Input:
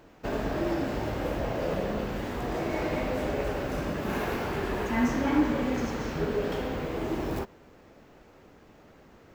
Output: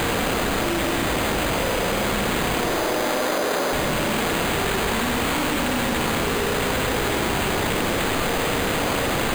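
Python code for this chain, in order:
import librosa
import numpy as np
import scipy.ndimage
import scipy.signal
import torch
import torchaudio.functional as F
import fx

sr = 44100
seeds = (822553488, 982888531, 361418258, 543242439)

y = np.sign(x) * np.sqrt(np.mean(np.square(x)))
y = fx.quant_dither(y, sr, seeds[0], bits=6, dither='triangular')
y = fx.bandpass_edges(y, sr, low_hz=330.0, high_hz=2200.0, at=(2.6, 3.73))
y = fx.echo_alternate(y, sr, ms=102, hz=1700.0, feedback_pct=79, wet_db=-12.0)
y = fx.rev_schroeder(y, sr, rt60_s=1.2, comb_ms=32, drr_db=-3.0)
y = np.repeat(y[::8], 8)[:len(y)]
y = fx.env_flatten(y, sr, amount_pct=100)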